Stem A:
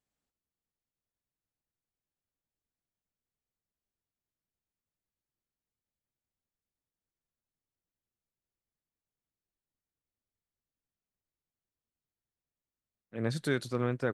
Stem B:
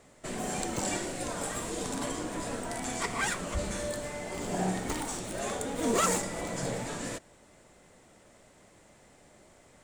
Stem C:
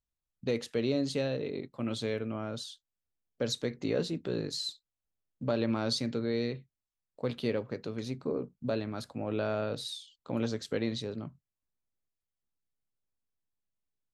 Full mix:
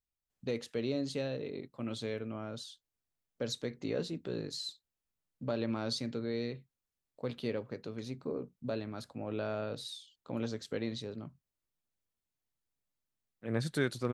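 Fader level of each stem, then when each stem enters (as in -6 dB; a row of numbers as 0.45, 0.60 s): -1.0 dB, off, -4.5 dB; 0.30 s, off, 0.00 s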